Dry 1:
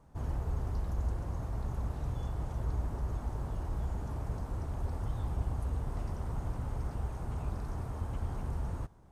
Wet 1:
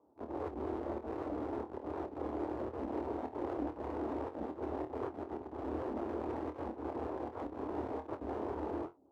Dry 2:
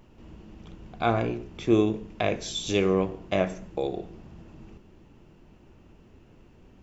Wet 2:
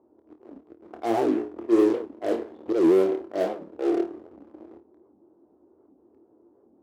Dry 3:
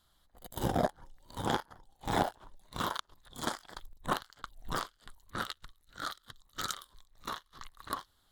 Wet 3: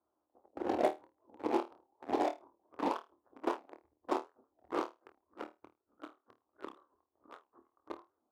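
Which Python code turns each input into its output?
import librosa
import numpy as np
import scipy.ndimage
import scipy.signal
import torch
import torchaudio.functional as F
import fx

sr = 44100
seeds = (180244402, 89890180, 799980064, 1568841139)

p1 = fx.dynamic_eq(x, sr, hz=140.0, q=2.1, threshold_db=-50.0, ratio=4.0, max_db=-7)
p2 = fx.auto_swell(p1, sr, attack_ms=121.0)
p3 = scipy.signal.sosfilt(scipy.signal.butter(4, 1000.0, 'lowpass', fs=sr, output='sos'), p2)
p4 = fx.fuzz(p3, sr, gain_db=35.0, gate_db=-43.0)
p5 = p3 + (p4 * 10.0 ** (-10.5 / 20.0))
p6 = scipy.signal.sosfilt(scipy.signal.butter(4, 78.0, 'highpass', fs=sr, output='sos'), p5)
p7 = fx.low_shelf_res(p6, sr, hz=220.0, db=-12.5, q=3.0)
p8 = p7 + fx.room_flutter(p7, sr, wall_m=4.5, rt60_s=0.22, dry=0)
p9 = fx.record_warp(p8, sr, rpm=78.0, depth_cents=250.0)
y = p9 * 10.0 ** (-5.5 / 20.0)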